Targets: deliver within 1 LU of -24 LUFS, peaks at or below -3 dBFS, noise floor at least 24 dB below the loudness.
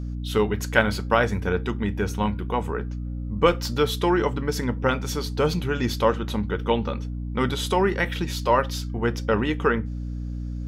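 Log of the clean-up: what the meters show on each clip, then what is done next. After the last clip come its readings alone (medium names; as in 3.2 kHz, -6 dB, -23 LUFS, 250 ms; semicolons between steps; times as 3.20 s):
hum 60 Hz; highest harmonic 300 Hz; hum level -28 dBFS; loudness -24.5 LUFS; peak level -1.5 dBFS; loudness target -24.0 LUFS
-> de-hum 60 Hz, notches 5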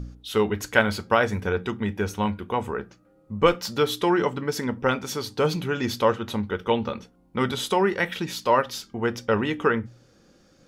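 hum not found; loudness -25.0 LUFS; peak level -1.0 dBFS; loudness target -24.0 LUFS
-> trim +1 dB; peak limiter -3 dBFS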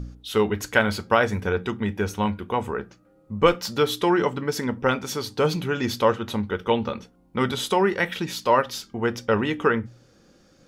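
loudness -24.0 LUFS; peak level -3.0 dBFS; noise floor -58 dBFS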